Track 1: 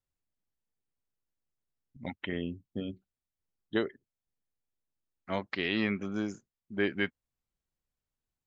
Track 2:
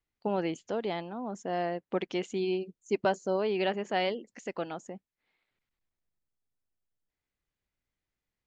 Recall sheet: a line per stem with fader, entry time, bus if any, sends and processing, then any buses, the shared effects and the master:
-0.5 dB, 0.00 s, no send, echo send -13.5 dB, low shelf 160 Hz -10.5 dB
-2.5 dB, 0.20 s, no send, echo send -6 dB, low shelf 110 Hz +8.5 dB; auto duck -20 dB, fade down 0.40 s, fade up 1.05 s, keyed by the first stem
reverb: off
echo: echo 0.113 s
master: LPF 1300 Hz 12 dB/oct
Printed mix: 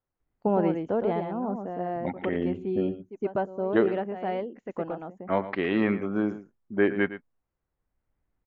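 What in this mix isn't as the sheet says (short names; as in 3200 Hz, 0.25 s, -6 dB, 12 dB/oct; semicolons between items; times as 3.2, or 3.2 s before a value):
stem 1 -0.5 dB -> +9.5 dB; stem 2 -2.5 dB -> +5.5 dB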